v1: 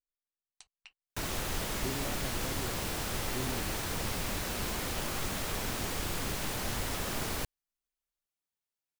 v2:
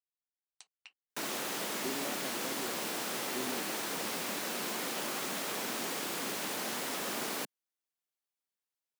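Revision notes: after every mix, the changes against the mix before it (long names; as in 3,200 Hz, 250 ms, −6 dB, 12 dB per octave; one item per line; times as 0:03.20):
master: add high-pass filter 210 Hz 24 dB per octave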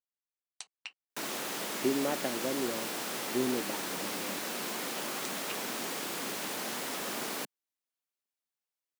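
speech +10.5 dB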